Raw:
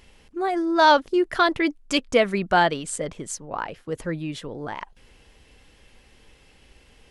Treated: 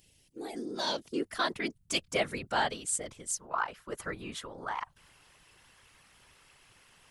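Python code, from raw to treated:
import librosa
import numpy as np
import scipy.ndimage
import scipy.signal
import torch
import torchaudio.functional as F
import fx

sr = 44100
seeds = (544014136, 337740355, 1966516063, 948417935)

y = fx.peak_eq(x, sr, hz=1200.0, db=fx.steps((0.0, -13.5), (1.05, 2.5), (3.4, 14.5)), octaves=1.3)
y = fx.whisperise(y, sr, seeds[0])
y = librosa.effects.preemphasis(y, coef=0.8, zi=[0.0])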